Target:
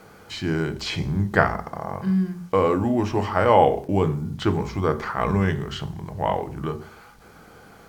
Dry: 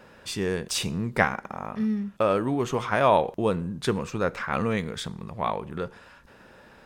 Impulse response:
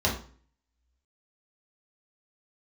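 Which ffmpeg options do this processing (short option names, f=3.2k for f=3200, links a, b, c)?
-filter_complex "[0:a]bandreject=f=50:t=h:w=6,bandreject=f=100:t=h:w=6,bandreject=f=150:t=h:w=6,bandreject=f=200:t=h:w=6,bandreject=f=250:t=h:w=6,acrossover=split=5100[a][b];[b]acompressor=threshold=-50dB:ratio=4:attack=1:release=60[c];[a][c]amix=inputs=2:normalize=0,acrusher=bits=9:mix=0:aa=0.000001,asetrate=38367,aresample=44100,asplit=2[d][e];[1:a]atrim=start_sample=2205[f];[e][f]afir=irnorm=-1:irlink=0,volume=-19.5dB[g];[d][g]amix=inputs=2:normalize=0,volume=2dB"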